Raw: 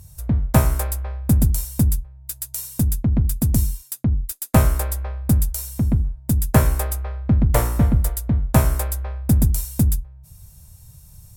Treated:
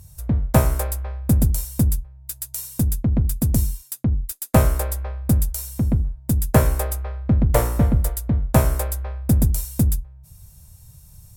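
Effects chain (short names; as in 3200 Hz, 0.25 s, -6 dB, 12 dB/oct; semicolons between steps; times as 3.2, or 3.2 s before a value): dynamic EQ 510 Hz, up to +5 dB, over -39 dBFS, Q 1.7; gain -1 dB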